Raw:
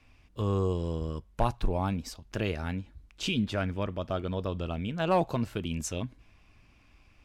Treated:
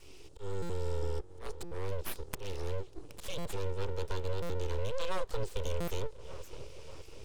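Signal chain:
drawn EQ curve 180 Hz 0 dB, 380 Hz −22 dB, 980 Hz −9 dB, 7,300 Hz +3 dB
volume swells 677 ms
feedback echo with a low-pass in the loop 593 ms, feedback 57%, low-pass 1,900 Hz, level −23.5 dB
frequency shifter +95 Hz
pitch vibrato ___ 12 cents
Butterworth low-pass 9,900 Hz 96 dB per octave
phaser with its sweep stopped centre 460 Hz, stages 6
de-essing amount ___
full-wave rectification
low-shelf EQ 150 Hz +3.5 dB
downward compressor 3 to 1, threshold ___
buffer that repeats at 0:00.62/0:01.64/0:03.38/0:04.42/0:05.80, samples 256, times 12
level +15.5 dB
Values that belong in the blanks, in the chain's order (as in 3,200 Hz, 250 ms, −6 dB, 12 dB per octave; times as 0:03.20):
7.8 Hz, 95%, −47 dBFS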